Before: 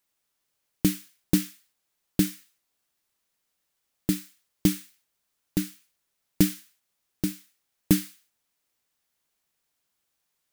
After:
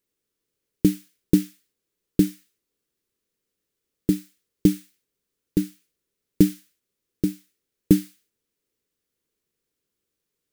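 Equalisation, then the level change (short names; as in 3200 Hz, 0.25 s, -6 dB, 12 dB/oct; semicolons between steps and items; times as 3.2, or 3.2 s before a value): resonant low shelf 560 Hz +7.5 dB, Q 3; -4.5 dB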